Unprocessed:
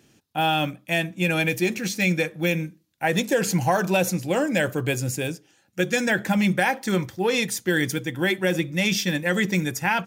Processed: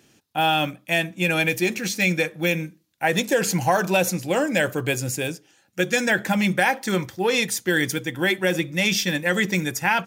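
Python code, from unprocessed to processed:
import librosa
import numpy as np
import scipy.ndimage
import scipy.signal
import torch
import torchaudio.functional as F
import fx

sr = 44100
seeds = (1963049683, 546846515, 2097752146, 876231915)

y = fx.low_shelf(x, sr, hz=310.0, db=-5.0)
y = F.gain(torch.from_numpy(y), 2.5).numpy()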